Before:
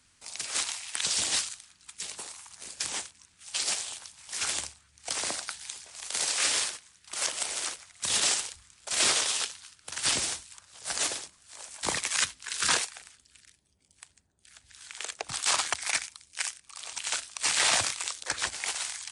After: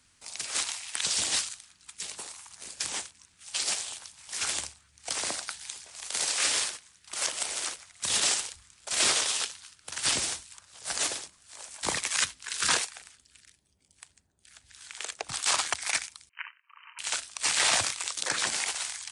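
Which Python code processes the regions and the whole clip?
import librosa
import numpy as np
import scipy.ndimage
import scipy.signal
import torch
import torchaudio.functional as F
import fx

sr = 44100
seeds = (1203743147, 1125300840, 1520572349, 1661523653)

y = fx.chain(x, sr, fx.brickwall_bandpass(low_hz=890.0, high_hz=3100.0),
    fx.air_absorb(metres=290.0), at=(16.29, 16.99))
y = fx.chain(y, sr, fx.low_shelf_res(hz=110.0, db=-12.0, q=1.5),
    fx.env_flatten(amount_pct=70), at=(18.17, 18.64))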